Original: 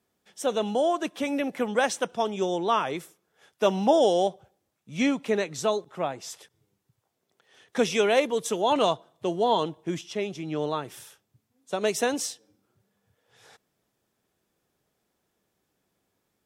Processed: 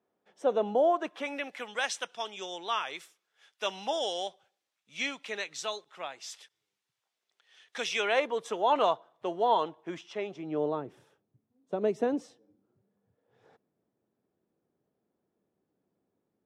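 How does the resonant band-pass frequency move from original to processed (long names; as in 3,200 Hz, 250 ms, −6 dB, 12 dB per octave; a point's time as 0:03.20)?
resonant band-pass, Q 0.75
0:00.81 580 Hz
0:01.61 3,200 Hz
0:07.83 3,200 Hz
0:08.27 1,100 Hz
0:10.16 1,100 Hz
0:10.87 290 Hz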